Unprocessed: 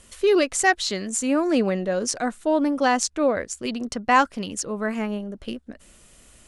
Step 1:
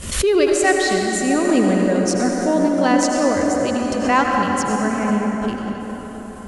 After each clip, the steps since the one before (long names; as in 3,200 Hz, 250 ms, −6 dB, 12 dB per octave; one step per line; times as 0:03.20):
parametric band 100 Hz +11 dB 1.9 octaves
convolution reverb RT60 5.4 s, pre-delay 73 ms, DRR −0.5 dB
background raised ahead of every attack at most 75 dB per second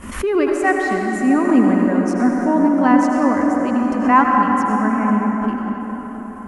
graphic EQ with 10 bands 125 Hz −10 dB, 250 Hz +12 dB, 500 Hz −5 dB, 1,000 Hz +10 dB, 2,000 Hz +4 dB, 4,000 Hz −12 dB, 8,000 Hz −8 dB
level −4 dB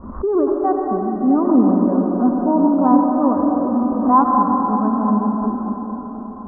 Butterworth low-pass 1,200 Hz 48 dB per octave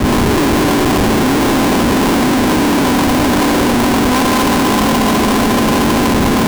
compressor on every frequency bin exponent 0.2
comparator with hysteresis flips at −11 dBFS
multiband upward and downward expander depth 70%
level −4.5 dB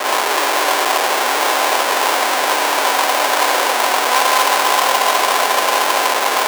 high-pass filter 560 Hz 24 dB per octave
level +2 dB